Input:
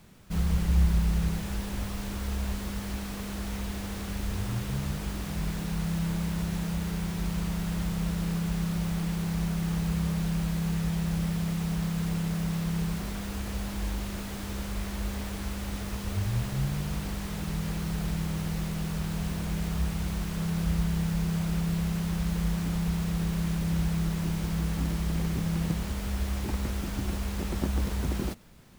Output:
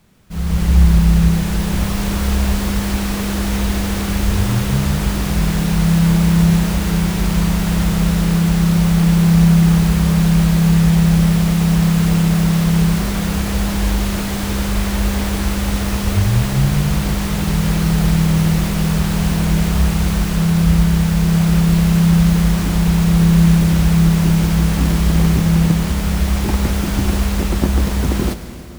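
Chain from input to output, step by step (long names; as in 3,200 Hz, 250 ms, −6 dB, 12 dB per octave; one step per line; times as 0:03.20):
automatic gain control gain up to 15 dB
on a send: convolution reverb RT60 3.4 s, pre-delay 37 ms, DRR 10 dB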